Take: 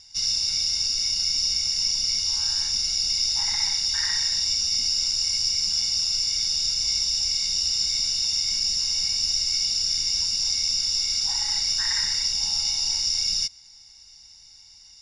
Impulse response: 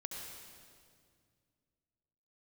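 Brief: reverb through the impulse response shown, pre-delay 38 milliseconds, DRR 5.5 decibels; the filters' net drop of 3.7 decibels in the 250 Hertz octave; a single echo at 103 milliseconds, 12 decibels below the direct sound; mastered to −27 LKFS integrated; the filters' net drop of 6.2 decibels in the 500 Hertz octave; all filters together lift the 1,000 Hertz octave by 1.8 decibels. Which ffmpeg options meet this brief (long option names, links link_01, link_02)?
-filter_complex "[0:a]equalizer=frequency=250:width_type=o:gain=-4,equalizer=frequency=500:width_type=o:gain=-9,equalizer=frequency=1000:width_type=o:gain=5,aecho=1:1:103:0.251,asplit=2[link_01][link_02];[1:a]atrim=start_sample=2205,adelay=38[link_03];[link_02][link_03]afir=irnorm=-1:irlink=0,volume=-4.5dB[link_04];[link_01][link_04]amix=inputs=2:normalize=0,volume=-7dB"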